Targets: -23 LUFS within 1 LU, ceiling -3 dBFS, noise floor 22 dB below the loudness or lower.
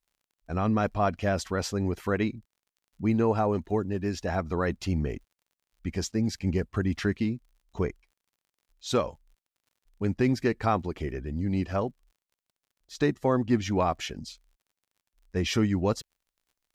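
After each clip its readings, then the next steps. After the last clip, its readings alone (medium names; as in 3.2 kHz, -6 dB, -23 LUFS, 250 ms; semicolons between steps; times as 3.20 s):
tick rate 36 per s; loudness -29.0 LUFS; peak level -13.0 dBFS; loudness target -23.0 LUFS
-> de-click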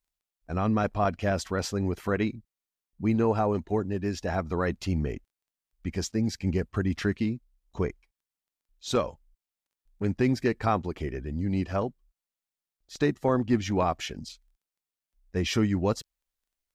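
tick rate 0 per s; loudness -29.0 LUFS; peak level -13.0 dBFS; loudness target -23.0 LUFS
-> trim +6 dB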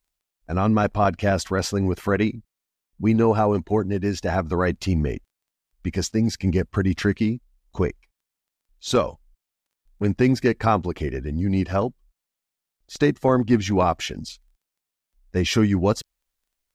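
loudness -23.0 LUFS; peak level -7.0 dBFS; noise floor -85 dBFS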